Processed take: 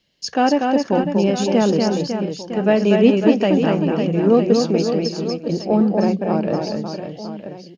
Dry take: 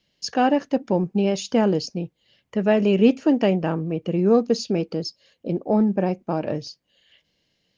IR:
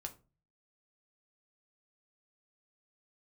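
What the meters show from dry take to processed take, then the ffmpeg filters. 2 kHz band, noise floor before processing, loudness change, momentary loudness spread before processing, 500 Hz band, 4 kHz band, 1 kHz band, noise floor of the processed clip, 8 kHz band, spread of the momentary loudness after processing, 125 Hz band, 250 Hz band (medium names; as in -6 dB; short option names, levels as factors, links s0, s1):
+4.5 dB, -72 dBFS, +4.0 dB, 12 LU, +4.5 dB, +4.5 dB, +4.5 dB, -40 dBFS, no reading, 11 LU, +4.0 dB, +4.5 dB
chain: -af "bandreject=f=60:t=h:w=6,bandreject=f=120:t=h:w=6,bandreject=f=180:t=h:w=6,aecho=1:1:240|552|957.6|1485|2170:0.631|0.398|0.251|0.158|0.1,volume=1.33"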